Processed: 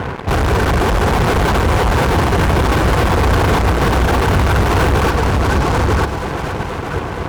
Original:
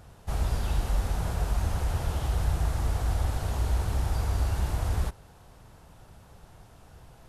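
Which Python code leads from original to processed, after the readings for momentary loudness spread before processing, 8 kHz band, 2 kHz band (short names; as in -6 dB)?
2 LU, +14.0 dB, +24.5 dB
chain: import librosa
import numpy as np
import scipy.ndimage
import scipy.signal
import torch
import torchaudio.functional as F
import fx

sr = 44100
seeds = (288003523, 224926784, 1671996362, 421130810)

p1 = fx.cvsd(x, sr, bps=32000)
p2 = scipy.signal.sosfilt(scipy.signal.cheby1(6, 6, 1600.0, 'lowpass', fs=sr, output='sos'), p1)
p3 = fx.peak_eq(p2, sr, hz=190.0, db=-2.5, octaves=1.8)
p4 = fx.notch_comb(p3, sr, f0_hz=610.0)
p5 = p4 + fx.echo_single(p4, sr, ms=950, db=-5.5, dry=0)
p6 = fx.dereverb_blind(p5, sr, rt60_s=0.72)
p7 = 10.0 ** (-37.5 / 20.0) * np.tanh(p6 / 10.0 ** (-37.5 / 20.0))
p8 = p6 + (p7 * librosa.db_to_amplitude(-5.5))
p9 = scipy.signal.sosfilt(scipy.signal.butter(2, 66.0, 'highpass', fs=sr, output='sos'), p8)
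p10 = fx.fuzz(p9, sr, gain_db=53.0, gate_db=-59.0)
y = fx.echo_alternate(p10, sr, ms=236, hz=910.0, feedback_pct=84, wet_db=-7.5)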